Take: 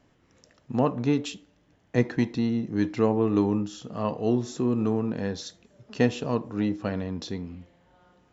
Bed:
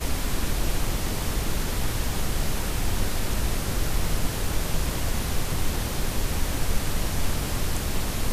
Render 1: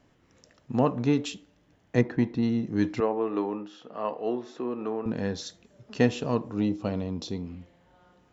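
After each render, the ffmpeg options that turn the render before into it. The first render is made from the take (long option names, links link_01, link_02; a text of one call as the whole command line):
ffmpeg -i in.wav -filter_complex "[0:a]asettb=1/sr,asplit=3[link_01][link_02][link_03];[link_01]atrim=end=2.014[link_04];[link_02]atrim=start=2.01:end=2.43,asetpts=PTS-STARTPTS,afade=type=in:duration=0.004:curve=qsin,afade=type=out:start_time=0.416:duration=0.004:curve=qsin,lowpass=frequency=1600:poles=1[link_05];[link_03]atrim=start=2.426[link_06];[link_04][link_05]acrossfade=duration=0.004:curve1=hsin:curve2=qsin[link_07];[link_07][link_06]acrossfade=duration=0.004:curve1=qsin:curve2=hsin,asettb=1/sr,asplit=3[link_08][link_09][link_10];[link_08]atrim=end=3.004[link_11];[link_09]atrim=start=3:end=5.06,asetpts=PTS-STARTPTS,afade=type=in:duration=0.004:curve=qsin,afade=type=out:start_time=2.056:duration=0.004:curve=qsin,highpass=410,lowpass=2700[link_12];[link_10]atrim=start=5.056[link_13];[link_11][link_12]acrossfade=duration=0.004:curve1=hsin:curve2=qsin[link_14];[link_14][link_13]acrossfade=duration=0.004:curve1=qsin:curve2=hsin,asettb=1/sr,asplit=3[link_15][link_16][link_17];[link_15]atrim=end=6.544[link_18];[link_16]atrim=start=6.54:end=7.46,asetpts=PTS-STARTPTS,afade=type=in:duration=0.004:curve=qsin,afade=type=out:start_time=0.916:duration=0.004:curve=qsin,equalizer=frequency=1700:width_type=o:width=0.51:gain=-11.5[link_19];[link_17]atrim=start=7.456[link_20];[link_18][link_19]acrossfade=duration=0.004:curve1=hsin:curve2=qsin[link_21];[link_21][link_20]acrossfade=duration=0.004:curve1=qsin:curve2=hsin" out.wav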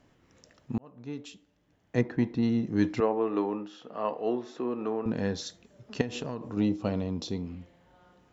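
ffmpeg -i in.wav -filter_complex "[0:a]asettb=1/sr,asplit=3[link_01][link_02][link_03];[link_01]atrim=end=6.014[link_04];[link_02]atrim=start=6.01:end=6.57,asetpts=PTS-STARTPTS,afade=type=in:duration=0.004:curve=qsin,afade=type=out:start_time=0.556:duration=0.004:curve=qsin,acompressor=threshold=-29dB:ratio=10:attack=3.2:release=140:knee=1:detection=peak[link_05];[link_03]atrim=start=6.566[link_06];[link_04][link_05]acrossfade=duration=0.004:curve1=hsin:curve2=qsin[link_07];[link_07][link_06]acrossfade=duration=0.004:curve1=qsin:curve2=hsin,asplit=2[link_08][link_09];[link_08]atrim=end=0.78,asetpts=PTS-STARTPTS,afade=type=out:start_time=0.776:duration=0.004:curve=hsin[link_10];[link_09]atrim=start=0.78,asetpts=PTS-STARTPTS,afade=type=in:duration=1.8[link_11];[link_10][link_11]concat=n=2:v=0:a=1" out.wav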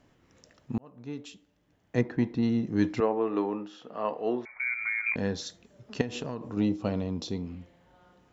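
ffmpeg -i in.wav -filter_complex "[0:a]asettb=1/sr,asplit=3[link_01][link_02][link_03];[link_01]atrim=end=4.454[link_04];[link_02]atrim=start=4.45:end=5.16,asetpts=PTS-STARTPTS,afade=type=in:duration=0.004:curve=qsin,afade=type=out:start_time=0.706:duration=0.004:curve=qsin,lowpass=frequency=2200:width_type=q:width=0.5098,lowpass=frequency=2200:width_type=q:width=0.6013,lowpass=frequency=2200:width_type=q:width=0.9,lowpass=frequency=2200:width_type=q:width=2.563,afreqshift=-2600[link_05];[link_03]atrim=start=5.156[link_06];[link_04][link_05]acrossfade=duration=0.004:curve1=hsin:curve2=qsin[link_07];[link_07][link_06]acrossfade=duration=0.004:curve1=qsin:curve2=hsin" out.wav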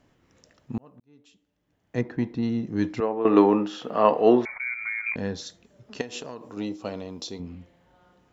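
ffmpeg -i in.wav -filter_complex "[0:a]asettb=1/sr,asplit=3[link_01][link_02][link_03];[link_01]atrim=end=5.984[link_04];[link_02]atrim=start=5.98:end=7.4,asetpts=PTS-STARTPTS,afade=type=in:duration=0.004:curve=qsin,afade=type=out:start_time=1.416:duration=0.004:curve=qsin,bass=frequency=250:gain=-11,treble=frequency=4000:gain=6[link_05];[link_03]atrim=start=7.396[link_06];[link_04][link_05]acrossfade=duration=0.004:curve1=hsin:curve2=qsin[link_07];[link_07][link_06]acrossfade=duration=0.004:curve1=qsin:curve2=hsin,asplit=4[link_08][link_09][link_10][link_11];[link_08]atrim=end=1,asetpts=PTS-STARTPTS,afade=type=out:start_time=0.996:duration=0.004:curve=hsin[link_12];[link_09]atrim=start=1:end=3.252,asetpts=PTS-STARTPTS,afade=type=in:duration=1.08[link_13];[link_10]atrim=start=3.248:end=4.582,asetpts=PTS-STARTPTS,volume=12dB[link_14];[link_11]atrim=start=4.578[link_15];[link_12][link_13]concat=n=2:v=0:a=1[link_16];[link_16][link_14]acrossfade=duration=0.004:curve1=hsin:curve2=hsin[link_17];[link_17][link_15]acrossfade=duration=0.004:curve1=hsin:curve2=hsin" out.wav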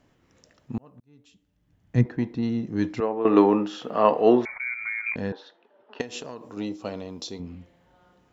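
ffmpeg -i in.wav -filter_complex "[0:a]asettb=1/sr,asplit=3[link_01][link_02][link_03];[link_01]atrim=end=0.724[link_04];[link_02]atrim=start=0.72:end=2.06,asetpts=PTS-STARTPTS,afade=type=in:duration=0.004:curve=qsin,afade=type=out:start_time=1.336:duration=0.004:curve=qsin,asubboost=boost=11:cutoff=200[link_05];[link_03]atrim=start=2.056[link_06];[link_04][link_05]acrossfade=duration=0.004:curve1=hsin:curve2=qsin[link_07];[link_07][link_06]acrossfade=duration=0.004:curve1=qsin:curve2=hsin,asettb=1/sr,asplit=3[link_08][link_09][link_10];[link_08]atrim=end=5.324[link_11];[link_09]atrim=start=5.32:end=6,asetpts=PTS-STARTPTS,afade=type=in:duration=0.004:curve=qsin,afade=type=out:start_time=0.676:duration=0.004:curve=qsin,highpass=frequency=340:width=0.5412,highpass=frequency=340:width=1.3066,equalizer=frequency=890:width_type=q:width=4:gain=10,equalizer=frequency=1500:width_type=q:width=4:gain=3,equalizer=frequency=2200:width_type=q:width=4:gain=-7,lowpass=frequency=3100:width=0.5412,lowpass=frequency=3100:width=1.3066[link_12];[link_10]atrim=start=5.996[link_13];[link_11][link_12]acrossfade=duration=0.004:curve1=hsin:curve2=qsin[link_14];[link_14][link_13]acrossfade=duration=0.004:curve1=qsin:curve2=hsin" out.wav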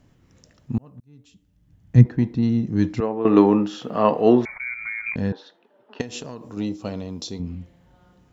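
ffmpeg -i in.wav -af "bass=frequency=250:gain=10,treble=frequency=4000:gain=4" out.wav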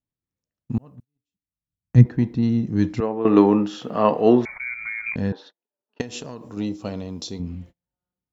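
ffmpeg -i in.wav -af "agate=range=-35dB:threshold=-42dB:ratio=16:detection=peak" out.wav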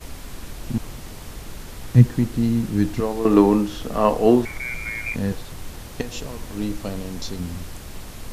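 ffmpeg -i in.wav -i bed.wav -filter_complex "[1:a]volume=-9.5dB[link_01];[0:a][link_01]amix=inputs=2:normalize=0" out.wav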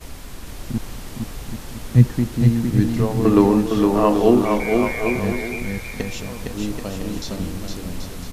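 ffmpeg -i in.wav -af "aecho=1:1:460|782|1007|1165|1276:0.631|0.398|0.251|0.158|0.1" out.wav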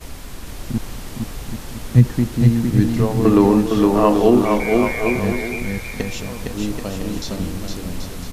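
ffmpeg -i in.wav -af "volume=2dB,alimiter=limit=-2dB:level=0:latency=1" out.wav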